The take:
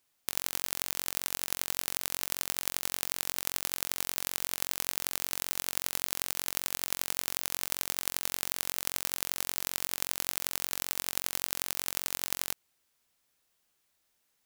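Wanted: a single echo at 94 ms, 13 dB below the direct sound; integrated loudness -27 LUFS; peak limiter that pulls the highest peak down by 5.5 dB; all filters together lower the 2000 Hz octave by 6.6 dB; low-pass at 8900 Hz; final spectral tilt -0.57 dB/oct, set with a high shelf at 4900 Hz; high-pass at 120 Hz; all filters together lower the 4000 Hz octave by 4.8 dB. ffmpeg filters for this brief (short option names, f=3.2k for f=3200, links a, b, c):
-af "highpass=120,lowpass=8.9k,equalizer=f=2k:t=o:g=-7.5,equalizer=f=4k:t=o:g=-8,highshelf=f=4.9k:g=7,alimiter=limit=-13.5dB:level=0:latency=1,aecho=1:1:94:0.224,volume=11dB"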